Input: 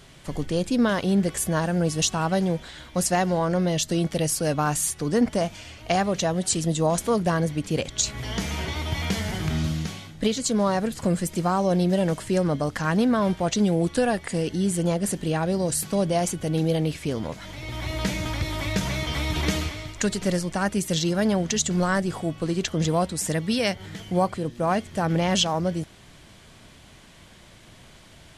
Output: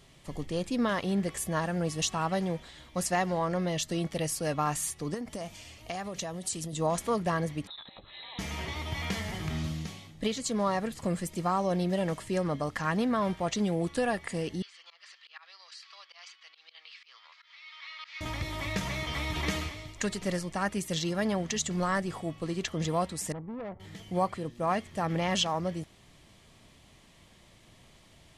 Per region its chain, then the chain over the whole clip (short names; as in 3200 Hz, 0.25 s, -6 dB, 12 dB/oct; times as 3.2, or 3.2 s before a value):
5.14–6.73 compressor 12:1, threshold -25 dBFS + high shelf 6500 Hz +8.5 dB
7.67–8.39 low shelf 130 Hz -11.5 dB + compressor 8:1, threshold -33 dBFS + inverted band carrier 4000 Hz
14.62–18.21 elliptic band-pass 1200–4800 Hz, stop band 70 dB + auto swell 0.12 s
23.32–23.8 LPF 1300 Hz 24 dB/oct + tube stage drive 28 dB, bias 0.55
whole clip: dynamic EQ 1500 Hz, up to +7 dB, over -39 dBFS, Q 0.79; notch 1500 Hz, Q 7.2; gain -8 dB